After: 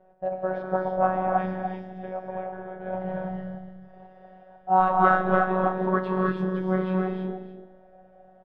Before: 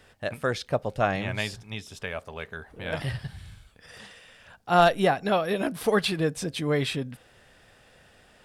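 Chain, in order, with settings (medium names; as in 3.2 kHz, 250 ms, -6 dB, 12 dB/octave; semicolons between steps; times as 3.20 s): in parallel at -11 dB: wavefolder -24.5 dBFS; on the sum: feedback comb 150 Hz, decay 1.1 s, harmonics all, mix 80%; gated-style reverb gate 350 ms rising, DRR -0.5 dB; robot voice 186 Hz; on a send: delay 295 ms -10 dB; on the sum: touch-sensitive low-pass 670–2600 Hz up, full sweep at -20.5 dBFS; trim +9 dB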